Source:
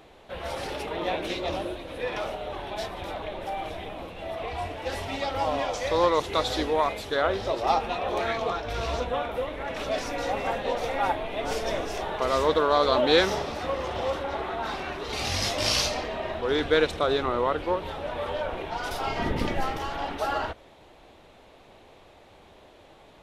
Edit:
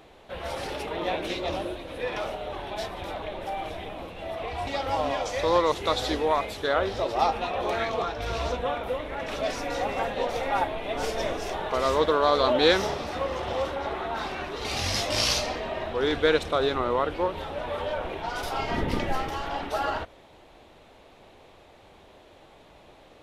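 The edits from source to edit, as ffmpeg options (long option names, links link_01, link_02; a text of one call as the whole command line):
ffmpeg -i in.wav -filter_complex "[0:a]asplit=2[link_01][link_02];[link_01]atrim=end=4.672[link_03];[link_02]atrim=start=5.148[link_04];[link_03][link_04]acrossfade=duration=0.004:curve1=hsin:curve2=hsin" out.wav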